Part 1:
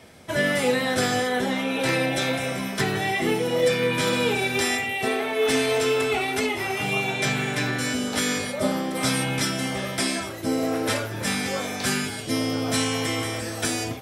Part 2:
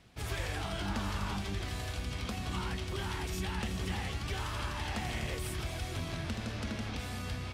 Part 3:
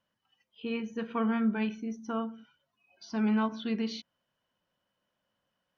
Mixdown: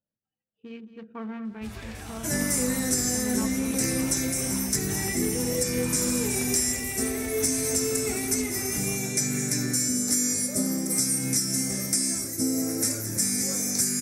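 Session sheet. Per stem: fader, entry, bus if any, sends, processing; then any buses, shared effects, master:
−2.5 dB, 1.95 s, no send, echo send −13.5 dB, drawn EQ curve 120 Hz 0 dB, 250 Hz +5 dB, 890 Hz −14 dB, 2,200 Hz −4 dB, 3,100 Hz −21 dB, 5,900 Hz +15 dB; downward compressor, threshold −19 dBFS, peak gain reduction 8 dB
−4.0 dB, 1.45 s, no send, no echo send, notch filter 3,200 Hz, Q 14
−6.5 dB, 0.00 s, no send, echo send −13 dB, adaptive Wiener filter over 41 samples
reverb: not used
echo: single-tap delay 219 ms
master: no processing

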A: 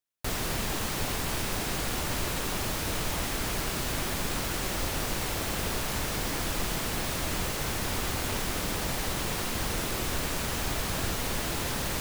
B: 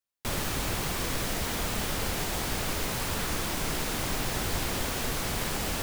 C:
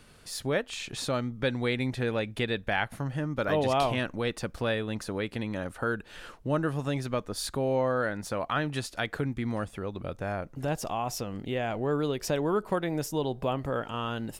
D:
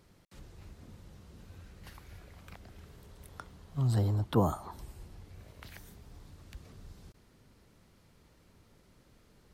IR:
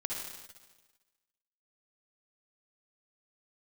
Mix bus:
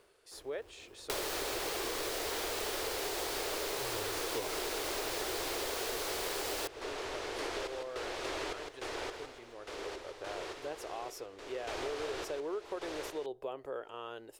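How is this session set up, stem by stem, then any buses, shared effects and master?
−2.5 dB, 1.10 s, no send, echo send −8.5 dB, low-pass filter 5,100 Hz 12 dB per octave; sample-and-hold tremolo, depth 95%
+2.5 dB, 0.85 s, no send, no echo send, parametric band 4,400 Hz +3.5 dB
−12.0 dB, 0.00 s, no send, no echo send, automatic ducking −7 dB, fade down 1.95 s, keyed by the fourth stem
−1.5 dB, 0.00 s, no send, no echo send, sample-and-hold swept by an LFO 13×, swing 60% 0.33 Hz; every ending faded ahead of time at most 160 dB per second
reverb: not used
echo: single-tap delay 158 ms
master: low shelf with overshoot 280 Hz −12 dB, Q 3; downward compressor 6 to 1, threshold −34 dBFS, peak gain reduction 13.5 dB

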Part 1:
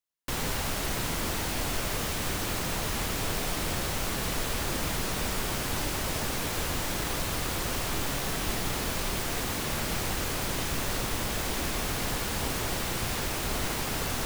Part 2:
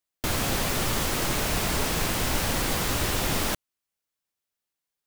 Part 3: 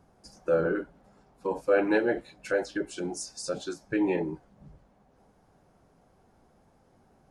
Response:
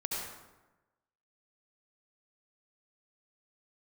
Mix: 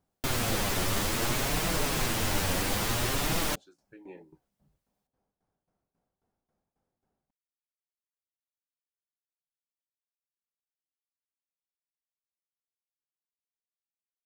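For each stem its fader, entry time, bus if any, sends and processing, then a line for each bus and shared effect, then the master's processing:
muted
+0.5 dB, 0.00 s, no send, flanger 0.59 Hz, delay 5.9 ms, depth 5.1 ms, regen +2%
−17.0 dB, 0.00 s, no send, shaped tremolo saw down 3.7 Hz, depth 85%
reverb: not used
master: no processing

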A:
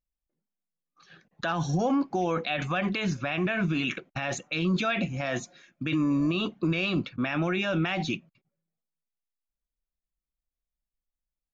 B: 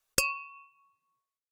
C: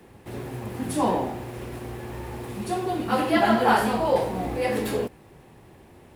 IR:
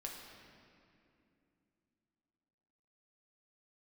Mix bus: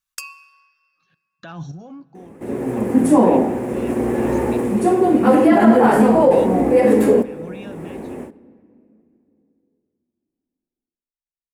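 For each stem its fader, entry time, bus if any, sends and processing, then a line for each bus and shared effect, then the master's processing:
−10.0 dB, 0.00 s, send −17.5 dB, sample-and-hold tremolo, depth 95%
−6.0 dB, 0.00 s, send −9 dB, high-pass filter 1,000 Hz 24 dB per octave
−7.0 dB, 2.15 s, send −12 dB, octave-band graphic EQ 125/250/500/1,000/2,000/4,000/8,000 Hz −8/+11/+11/+4/+6/−8/+8 dB; brickwall limiter −6 dBFS, peak gain reduction 8.5 dB; automatic gain control gain up to 13 dB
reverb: on, RT60 2.7 s, pre-delay 5 ms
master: parametric band 150 Hz +8.5 dB 2.1 octaves

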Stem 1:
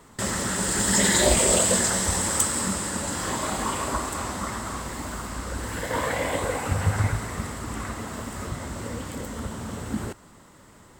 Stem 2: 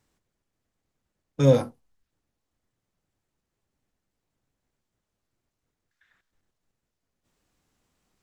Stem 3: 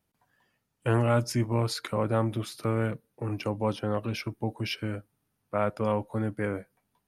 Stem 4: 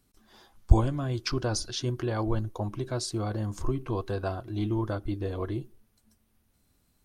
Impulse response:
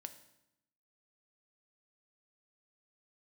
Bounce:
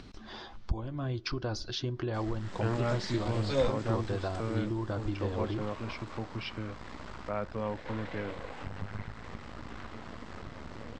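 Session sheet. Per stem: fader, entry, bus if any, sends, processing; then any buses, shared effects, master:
−14.5 dB, 1.95 s, bus A, send −8 dB, half-wave rectification
−3.0 dB, 2.10 s, no bus, no send, high-pass filter 840 Hz 6 dB per octave
−7.5 dB, 1.75 s, no bus, no send, no processing
−0.5 dB, 0.00 s, bus A, send −20.5 dB, no processing
bus A: 0.0 dB, downward compressor 8 to 1, threshold −30 dBFS, peak gain reduction 20 dB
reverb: on, RT60 0.85 s, pre-delay 3 ms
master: low-pass filter 4,900 Hz 24 dB per octave; upward compression, threshold −33 dBFS

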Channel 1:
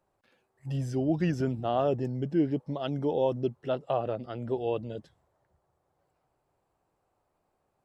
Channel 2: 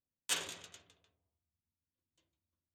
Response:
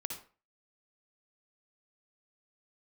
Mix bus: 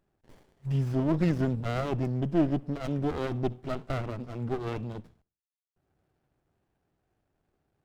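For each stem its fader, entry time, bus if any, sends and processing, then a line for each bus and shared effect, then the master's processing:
+3.0 dB, 0.00 s, muted 0:05.22–0:05.76, send −16 dB, parametric band 520 Hz −11.5 dB 0.46 octaves
−14.5 dB, 0.00 s, send −6.5 dB, automatic ducking −12 dB, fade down 0.45 s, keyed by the first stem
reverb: on, RT60 0.35 s, pre-delay 53 ms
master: windowed peak hold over 33 samples

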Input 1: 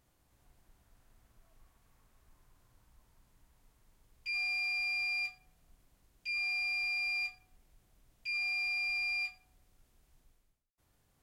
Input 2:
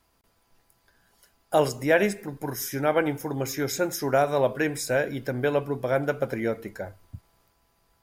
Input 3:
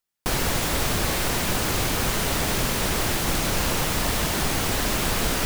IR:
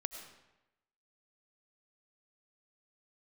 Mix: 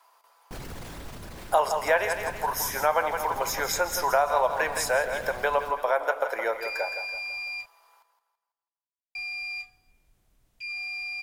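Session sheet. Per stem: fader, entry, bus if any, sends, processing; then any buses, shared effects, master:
−1.0 dB, 2.35 s, muted 0:07.66–0:09.15, send −15 dB, no echo send, no processing
+1.5 dB, 0.00 s, send −9.5 dB, echo send −8 dB, high-pass filter 530 Hz 24 dB per octave; parametric band 1,000 Hz +12 dB 0.75 octaves
−9.5 dB, 0.25 s, send −8 dB, no echo send, spectral envelope exaggerated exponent 1.5; brickwall limiter −19 dBFS, peak gain reduction 6 dB; automatic ducking −13 dB, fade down 1.40 s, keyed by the second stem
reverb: on, RT60 0.95 s, pre-delay 60 ms
echo: repeating echo 165 ms, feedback 40%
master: downward compressor 2 to 1, threshold −24 dBFS, peak gain reduction 8.5 dB

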